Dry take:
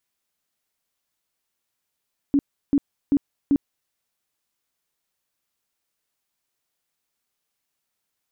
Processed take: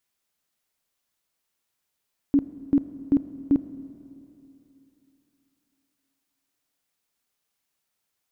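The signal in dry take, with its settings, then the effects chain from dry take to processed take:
tone bursts 282 Hz, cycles 14, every 0.39 s, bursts 4, -14 dBFS
Schroeder reverb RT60 3.1 s, combs from 26 ms, DRR 12.5 dB

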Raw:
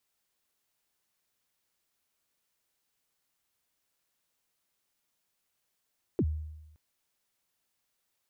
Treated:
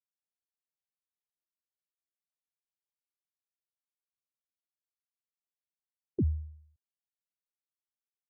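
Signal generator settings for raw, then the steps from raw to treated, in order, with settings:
kick drum length 0.57 s, from 440 Hz, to 77 Hz, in 56 ms, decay 0.99 s, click off, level -22 dB
vibrato 0.55 Hz 19 cents; spectral expander 1.5:1

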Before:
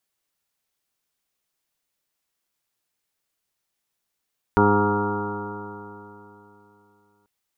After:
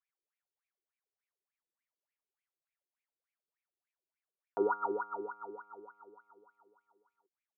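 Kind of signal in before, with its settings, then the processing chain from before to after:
stretched partials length 2.69 s, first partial 102 Hz, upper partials 2/1/4/-6.5/-20/-7/-7/4/-16/-6/-7/-1 dB, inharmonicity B 0.00071, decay 3.18 s, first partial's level -22.5 dB
HPF 240 Hz 6 dB/oct; wah 3.4 Hz 350–2400 Hz, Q 9.1

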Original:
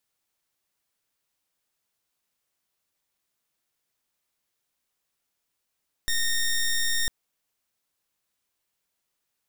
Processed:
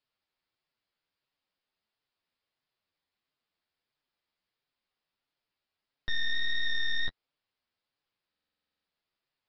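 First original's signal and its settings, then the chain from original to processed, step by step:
pulse 1840 Hz, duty 13% -24 dBFS 1.00 s
flange 1.5 Hz, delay 6.4 ms, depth 6.8 ms, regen +12%; downsampling 11025 Hz; stuck buffer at 8.3, samples 2048, times 11

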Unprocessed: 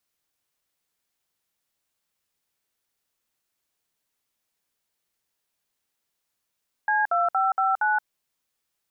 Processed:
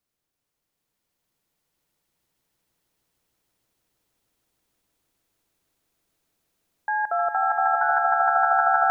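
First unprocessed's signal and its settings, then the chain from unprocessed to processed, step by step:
DTMF "C2559", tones 0.174 s, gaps 59 ms, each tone -22 dBFS
tilt shelf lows +5 dB, about 680 Hz; on a send: swelling echo 0.155 s, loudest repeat 8, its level -3.5 dB

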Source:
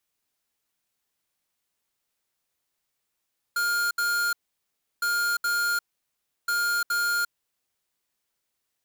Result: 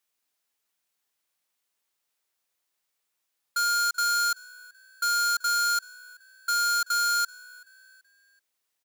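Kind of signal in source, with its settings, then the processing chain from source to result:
beep pattern square 1410 Hz, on 0.35 s, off 0.07 s, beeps 2, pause 0.69 s, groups 3, -25 dBFS
low shelf 260 Hz -10.5 dB; frequency-shifting echo 0.381 s, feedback 42%, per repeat +64 Hz, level -23 dB; dynamic EQ 5900 Hz, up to +7 dB, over -48 dBFS, Q 1.6

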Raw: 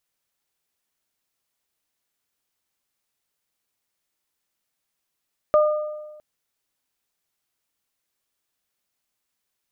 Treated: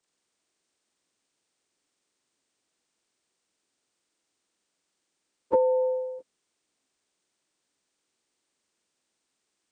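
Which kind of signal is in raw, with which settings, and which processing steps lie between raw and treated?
additive tone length 0.66 s, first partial 606 Hz, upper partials -7 dB, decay 1.27 s, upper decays 0.90 s, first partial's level -12 dB
inharmonic rescaling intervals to 81%; bell 320 Hz +11 dB 1.7 oct; compressor 6:1, threshold -20 dBFS

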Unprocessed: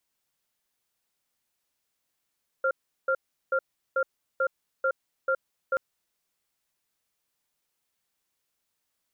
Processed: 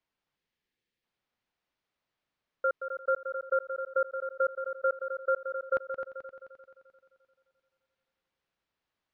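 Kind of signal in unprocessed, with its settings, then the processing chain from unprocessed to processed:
cadence 531 Hz, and 1390 Hz, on 0.07 s, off 0.37 s, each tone -24.5 dBFS 3.13 s
spectral gain 0.36–1.04, 540–1600 Hz -10 dB; air absorption 230 m; multi-head echo 87 ms, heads second and third, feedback 53%, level -9 dB

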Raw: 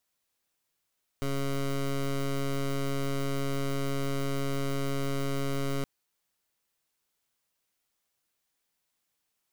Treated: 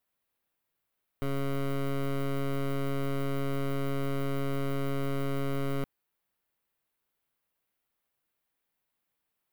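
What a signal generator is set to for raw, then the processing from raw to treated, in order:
pulse 138 Hz, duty 16% -29.5 dBFS 4.62 s
bell 6300 Hz -12.5 dB 1.4 oct

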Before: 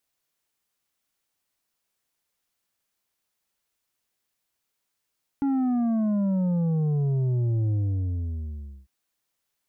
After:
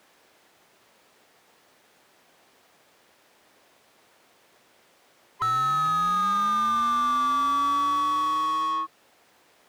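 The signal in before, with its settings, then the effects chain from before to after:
sub drop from 280 Hz, over 3.45 s, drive 6.5 dB, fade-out 1.16 s, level -22 dB
band-swap scrambler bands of 1000 Hz; in parallel at -11 dB: sample-and-hold 31×; on the sum: overdrive pedal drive 37 dB, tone 1100 Hz, clips at -16.5 dBFS

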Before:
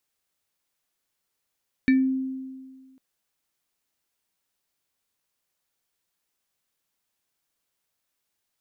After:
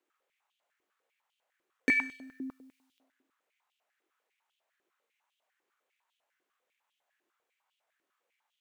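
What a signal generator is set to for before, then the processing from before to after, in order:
FM tone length 1.10 s, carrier 263 Hz, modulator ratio 7.76, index 0.61, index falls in 0.27 s exponential, decay 1.70 s, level -14 dB
median filter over 9 samples; Schroeder reverb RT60 0.81 s, combs from 30 ms, DRR 5 dB; stepped high-pass 10 Hz 350–3100 Hz

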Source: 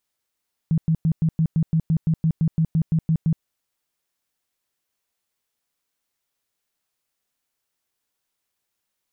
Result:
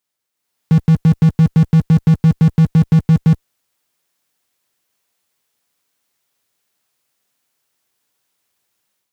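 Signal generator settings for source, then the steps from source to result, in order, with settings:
tone bursts 161 Hz, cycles 11, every 0.17 s, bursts 16, -15.5 dBFS
HPF 80 Hz 24 dB/oct; AGC gain up to 9 dB; in parallel at -9.5 dB: fuzz box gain 43 dB, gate -44 dBFS

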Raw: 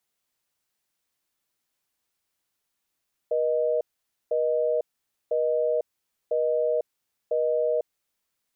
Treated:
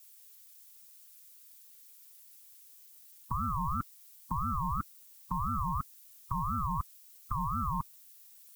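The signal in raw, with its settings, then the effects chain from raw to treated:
call progress tone busy tone, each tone -24 dBFS 4.64 s
harmonic-percussive split percussive +9 dB; tilt +6 dB/oct; ring modulator with a swept carrier 580 Hz, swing 25%, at 2.9 Hz

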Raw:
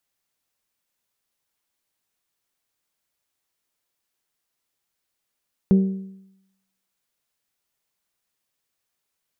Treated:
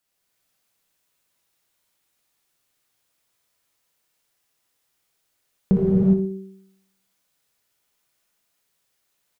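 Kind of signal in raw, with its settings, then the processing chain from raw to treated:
metal hit bell, lowest mode 192 Hz, decay 0.83 s, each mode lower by 10.5 dB, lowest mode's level -10 dB
on a send: feedback echo 60 ms, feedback 37%, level -9 dB; on the sum: non-linear reverb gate 0.44 s flat, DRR -5.5 dB

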